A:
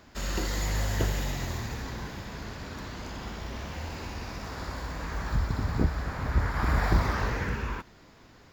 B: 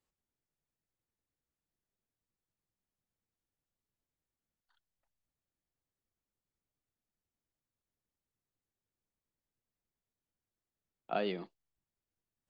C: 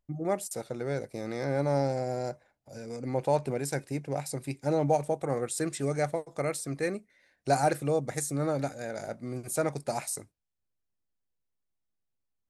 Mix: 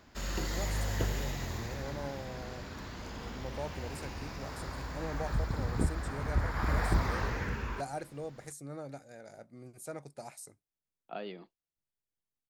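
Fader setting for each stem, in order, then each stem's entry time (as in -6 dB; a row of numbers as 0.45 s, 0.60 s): -4.5 dB, -7.0 dB, -13.5 dB; 0.00 s, 0.00 s, 0.30 s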